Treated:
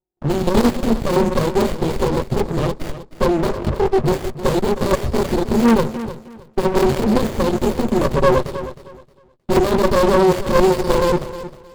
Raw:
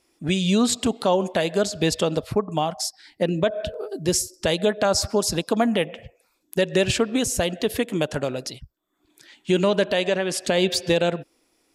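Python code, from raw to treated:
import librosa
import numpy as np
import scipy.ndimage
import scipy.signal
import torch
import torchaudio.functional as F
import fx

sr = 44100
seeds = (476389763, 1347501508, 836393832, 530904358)

y = fx.chorus_voices(x, sr, voices=2, hz=0.38, base_ms=19, depth_ms=2.6, mix_pct=40)
y = (np.mod(10.0 ** (16.5 / 20.0) * y + 1.0, 2.0) - 1.0) / 10.0 ** (16.5 / 20.0)
y = scipy.signal.sosfilt(scipy.signal.cheby1(5, 1.0, [530.0, 3200.0], 'bandstop', fs=sr, output='sos'), y)
y = fx.env_lowpass(y, sr, base_hz=1200.0, full_db=-24.5)
y = fx.level_steps(y, sr, step_db=12)
y = fx.ripple_eq(y, sr, per_octave=1.4, db=16)
y = fx.leveller(y, sr, passes=5)
y = fx.peak_eq(y, sr, hz=540.0, db=11.5, octaves=0.6)
y = fx.echo_feedback(y, sr, ms=312, feedback_pct=23, wet_db=-13.5)
y = fx.running_max(y, sr, window=33)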